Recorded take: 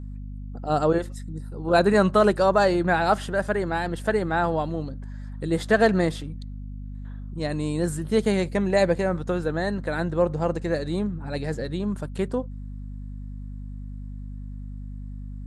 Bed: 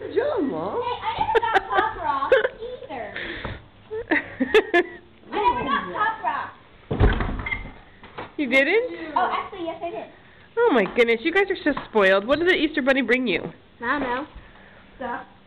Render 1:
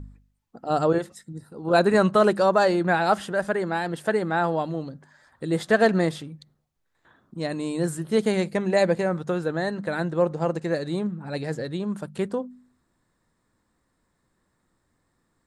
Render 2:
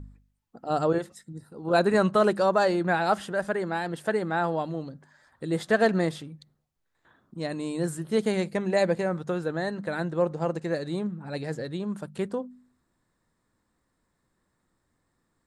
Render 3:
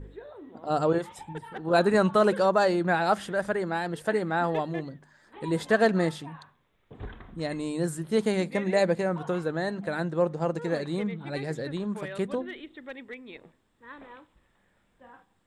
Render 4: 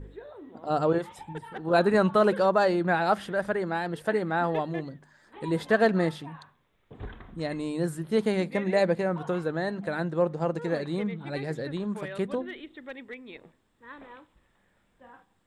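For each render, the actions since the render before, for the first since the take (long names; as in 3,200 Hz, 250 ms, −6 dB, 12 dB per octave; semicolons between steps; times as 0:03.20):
hum removal 50 Hz, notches 5
level −3 dB
mix in bed −22 dB
dynamic equaliser 7,400 Hz, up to −7 dB, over −55 dBFS, Q 1.2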